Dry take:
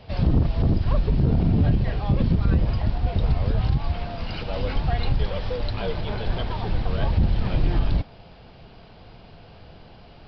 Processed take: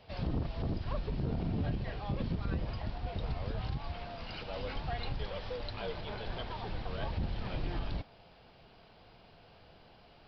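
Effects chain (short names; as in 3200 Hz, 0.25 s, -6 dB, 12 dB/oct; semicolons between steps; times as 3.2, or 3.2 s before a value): low shelf 290 Hz -8 dB; gain -8 dB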